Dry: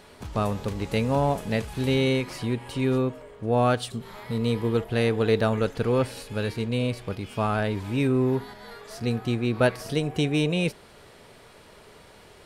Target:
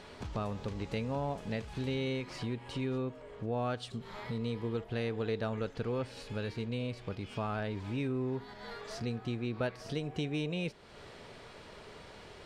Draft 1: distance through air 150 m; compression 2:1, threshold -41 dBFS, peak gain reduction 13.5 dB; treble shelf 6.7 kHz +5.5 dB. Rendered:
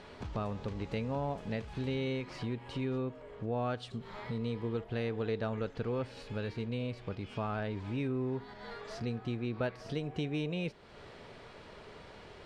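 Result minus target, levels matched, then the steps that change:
8 kHz band -5.5 dB
change: treble shelf 6.7 kHz +16.5 dB

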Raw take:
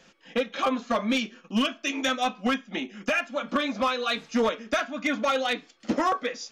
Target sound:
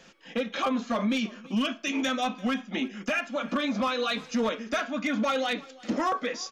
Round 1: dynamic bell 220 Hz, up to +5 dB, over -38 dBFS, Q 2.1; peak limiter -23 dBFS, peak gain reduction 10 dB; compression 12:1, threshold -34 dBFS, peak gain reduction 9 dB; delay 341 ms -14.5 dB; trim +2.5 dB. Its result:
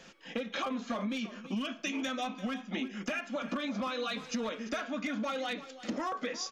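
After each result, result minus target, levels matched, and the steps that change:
compression: peak gain reduction +9 dB; echo-to-direct +7.5 dB
remove: compression 12:1, threshold -34 dBFS, peak gain reduction 9 dB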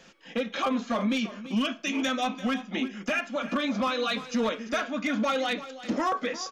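echo-to-direct +7.5 dB
change: delay 341 ms -22 dB

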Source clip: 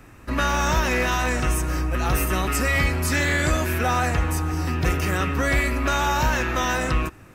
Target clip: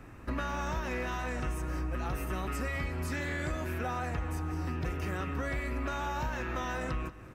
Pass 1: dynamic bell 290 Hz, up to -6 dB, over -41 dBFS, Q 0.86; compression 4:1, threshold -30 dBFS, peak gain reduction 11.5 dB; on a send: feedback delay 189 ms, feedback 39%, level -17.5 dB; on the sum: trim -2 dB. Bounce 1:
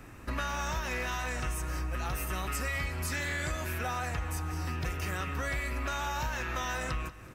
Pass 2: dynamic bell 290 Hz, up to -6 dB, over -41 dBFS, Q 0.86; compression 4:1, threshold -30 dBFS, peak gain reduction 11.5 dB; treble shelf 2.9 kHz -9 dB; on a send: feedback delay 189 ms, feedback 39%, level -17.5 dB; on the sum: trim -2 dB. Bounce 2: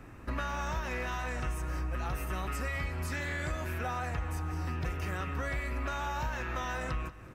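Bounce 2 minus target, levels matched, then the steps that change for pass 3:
250 Hz band -3.5 dB
remove: dynamic bell 290 Hz, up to -6 dB, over -41 dBFS, Q 0.86

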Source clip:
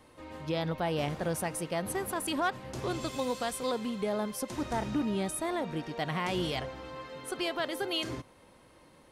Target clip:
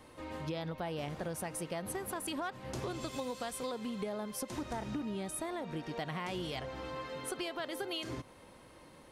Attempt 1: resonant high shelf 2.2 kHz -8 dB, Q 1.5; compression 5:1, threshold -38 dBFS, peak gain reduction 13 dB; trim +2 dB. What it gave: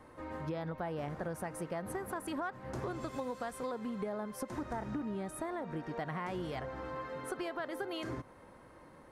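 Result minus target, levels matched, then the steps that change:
4 kHz band -8.0 dB
remove: resonant high shelf 2.2 kHz -8 dB, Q 1.5

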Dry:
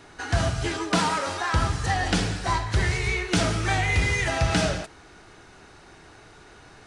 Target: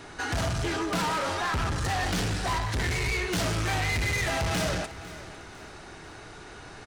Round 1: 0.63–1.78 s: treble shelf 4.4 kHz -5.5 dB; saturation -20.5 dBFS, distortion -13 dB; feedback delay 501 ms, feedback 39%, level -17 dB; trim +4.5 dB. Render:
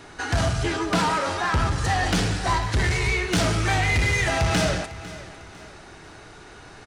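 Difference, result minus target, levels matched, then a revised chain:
saturation: distortion -7 dB
0.63–1.78 s: treble shelf 4.4 kHz -5.5 dB; saturation -30 dBFS, distortion -6 dB; feedback delay 501 ms, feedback 39%, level -17 dB; trim +4.5 dB

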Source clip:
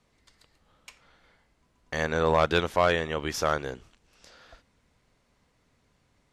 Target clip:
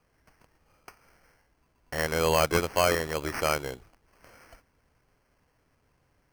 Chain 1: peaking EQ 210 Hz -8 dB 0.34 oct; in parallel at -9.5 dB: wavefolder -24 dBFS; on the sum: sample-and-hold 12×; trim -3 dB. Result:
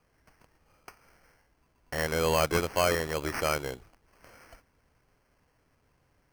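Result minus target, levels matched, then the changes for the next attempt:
wavefolder: distortion +23 dB
change: wavefolder -14.5 dBFS

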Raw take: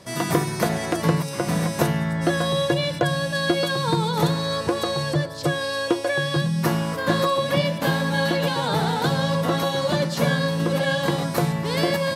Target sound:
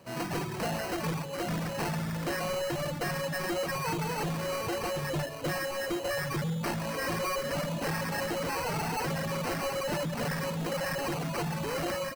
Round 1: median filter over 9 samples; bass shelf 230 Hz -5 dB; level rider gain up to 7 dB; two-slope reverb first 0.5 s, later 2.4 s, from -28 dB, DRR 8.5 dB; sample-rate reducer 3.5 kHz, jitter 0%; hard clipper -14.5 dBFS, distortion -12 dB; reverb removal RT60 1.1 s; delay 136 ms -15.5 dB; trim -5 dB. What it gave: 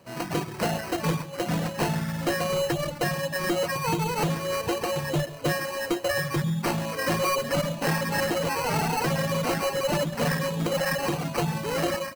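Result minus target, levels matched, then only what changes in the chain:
hard clipper: distortion -7 dB
change: hard clipper -23 dBFS, distortion -5 dB

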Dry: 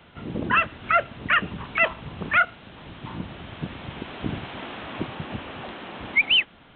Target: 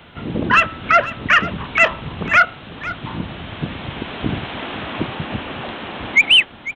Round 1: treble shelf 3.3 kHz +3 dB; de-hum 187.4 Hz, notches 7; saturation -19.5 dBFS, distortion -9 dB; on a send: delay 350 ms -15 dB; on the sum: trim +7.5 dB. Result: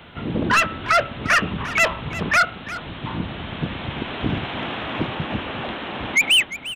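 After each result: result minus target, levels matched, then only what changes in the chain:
saturation: distortion +14 dB; echo 148 ms early
change: saturation -9 dBFS, distortion -24 dB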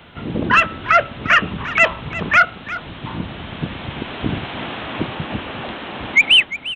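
echo 148 ms early
change: delay 498 ms -15 dB

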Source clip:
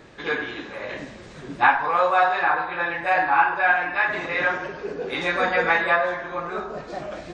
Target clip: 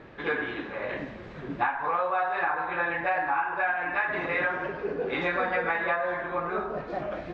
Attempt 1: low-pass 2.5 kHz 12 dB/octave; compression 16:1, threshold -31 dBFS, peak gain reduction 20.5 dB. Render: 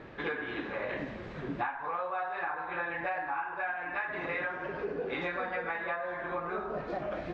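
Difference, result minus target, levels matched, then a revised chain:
compression: peak gain reduction +7.5 dB
low-pass 2.5 kHz 12 dB/octave; compression 16:1, threshold -23 dBFS, peak gain reduction 13 dB

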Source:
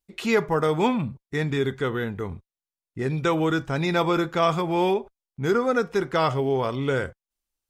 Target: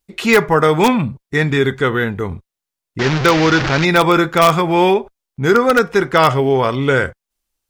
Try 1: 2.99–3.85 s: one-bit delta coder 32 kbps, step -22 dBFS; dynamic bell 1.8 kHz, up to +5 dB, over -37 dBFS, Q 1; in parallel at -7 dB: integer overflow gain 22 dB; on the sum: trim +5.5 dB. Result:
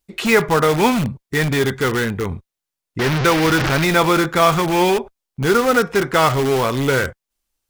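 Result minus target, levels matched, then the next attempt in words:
integer overflow: distortion +28 dB
2.99–3.85 s: one-bit delta coder 32 kbps, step -22 dBFS; dynamic bell 1.8 kHz, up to +5 dB, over -37 dBFS, Q 1; in parallel at -7 dB: integer overflow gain 10 dB; on the sum: trim +5.5 dB

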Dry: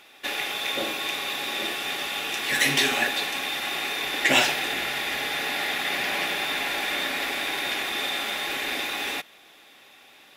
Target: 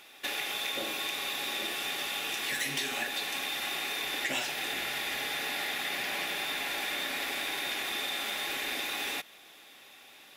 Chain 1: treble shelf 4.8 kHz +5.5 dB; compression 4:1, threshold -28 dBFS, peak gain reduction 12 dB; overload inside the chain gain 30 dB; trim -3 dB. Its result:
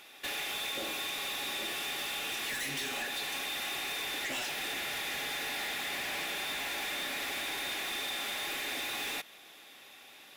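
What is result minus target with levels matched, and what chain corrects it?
overload inside the chain: distortion +21 dB
treble shelf 4.8 kHz +5.5 dB; compression 4:1, threshold -28 dBFS, peak gain reduction 12 dB; overload inside the chain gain 20.5 dB; trim -3 dB

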